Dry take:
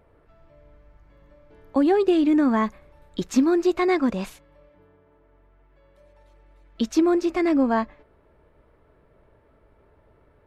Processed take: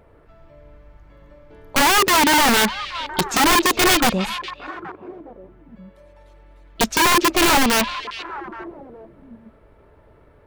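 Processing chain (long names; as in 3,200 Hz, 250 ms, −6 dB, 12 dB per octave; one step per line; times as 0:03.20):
wrap-around overflow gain 17.5 dB
echo through a band-pass that steps 412 ms, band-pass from 3,100 Hz, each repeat −1.4 octaves, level −9 dB
level +6.5 dB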